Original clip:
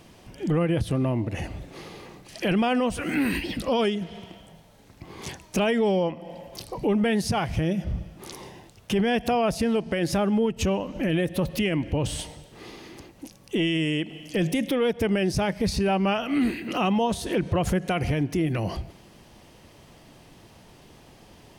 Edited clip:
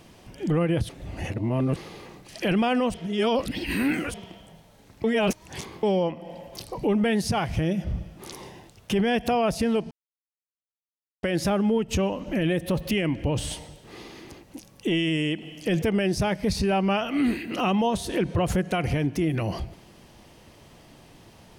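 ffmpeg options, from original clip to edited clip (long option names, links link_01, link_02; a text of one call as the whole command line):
ffmpeg -i in.wav -filter_complex "[0:a]asplit=9[link_01][link_02][link_03][link_04][link_05][link_06][link_07][link_08][link_09];[link_01]atrim=end=0.892[link_10];[link_02]atrim=start=0.888:end=1.762,asetpts=PTS-STARTPTS,areverse[link_11];[link_03]atrim=start=1.758:end=2.942[link_12];[link_04]atrim=start=2.938:end=4.142,asetpts=PTS-STARTPTS,areverse[link_13];[link_05]atrim=start=4.138:end=5.042[link_14];[link_06]atrim=start=5.038:end=5.832,asetpts=PTS-STARTPTS,areverse[link_15];[link_07]atrim=start=5.828:end=9.91,asetpts=PTS-STARTPTS,afade=type=out:start_time=4.078:duration=0.004:curve=hsin,apad=pad_dur=1.32[link_16];[link_08]atrim=start=9.91:end=14.502,asetpts=PTS-STARTPTS,afade=type=in:duration=0.004:curve=hsin[link_17];[link_09]atrim=start=14.988[link_18];[link_10][link_11]acrossfade=duration=0.004:curve1=hsin:curve2=hsin[link_19];[link_19][link_12]acrossfade=duration=0.004:curve1=hsin:curve2=hsin[link_20];[link_20][link_13]acrossfade=duration=0.004:curve1=hsin:curve2=hsin[link_21];[link_21][link_14]acrossfade=duration=0.004:curve1=hsin:curve2=hsin[link_22];[link_22][link_15]acrossfade=duration=0.004:curve1=hsin:curve2=hsin[link_23];[link_16][link_17]concat=n=2:v=0:a=1[link_24];[link_23][link_24]acrossfade=duration=0.004:curve1=hsin:curve2=hsin[link_25];[link_25][link_18]acrossfade=duration=0.004:curve1=hsin:curve2=hsin" out.wav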